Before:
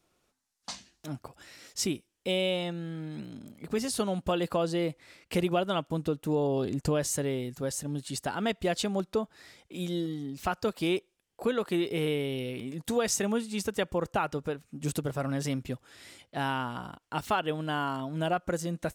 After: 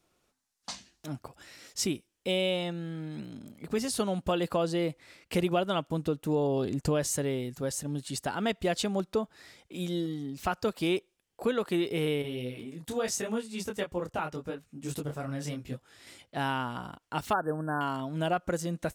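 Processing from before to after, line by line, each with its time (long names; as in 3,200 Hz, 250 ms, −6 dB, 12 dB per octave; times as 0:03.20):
0:12.22–0:16.07: micro pitch shift up and down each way 28 cents
0:17.33–0:17.81: linear-phase brick-wall band-stop 1,800–7,900 Hz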